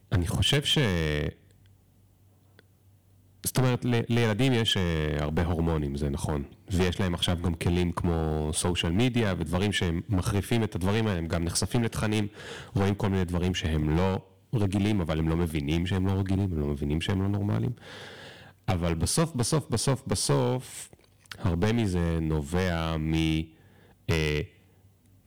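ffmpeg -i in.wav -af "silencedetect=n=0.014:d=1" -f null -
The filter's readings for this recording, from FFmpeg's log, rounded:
silence_start: 1.30
silence_end: 2.59 | silence_duration: 1.29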